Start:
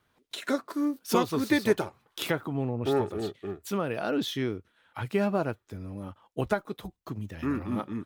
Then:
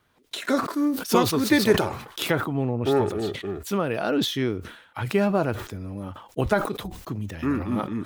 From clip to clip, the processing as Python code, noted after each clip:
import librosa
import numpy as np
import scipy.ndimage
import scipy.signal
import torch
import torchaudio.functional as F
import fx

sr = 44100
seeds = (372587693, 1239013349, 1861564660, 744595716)

y = fx.sustainer(x, sr, db_per_s=83.0)
y = F.gain(torch.from_numpy(y), 4.5).numpy()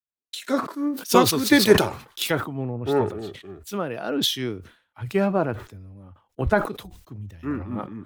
y = fx.vibrato(x, sr, rate_hz=1.1, depth_cents=38.0)
y = fx.band_widen(y, sr, depth_pct=100)
y = F.gain(torch.from_numpy(y), -1.5).numpy()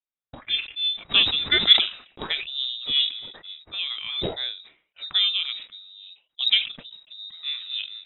y = fx.tracing_dist(x, sr, depth_ms=0.047)
y = fx.harmonic_tremolo(y, sr, hz=2.3, depth_pct=50, crossover_hz=1600.0)
y = fx.freq_invert(y, sr, carrier_hz=3800)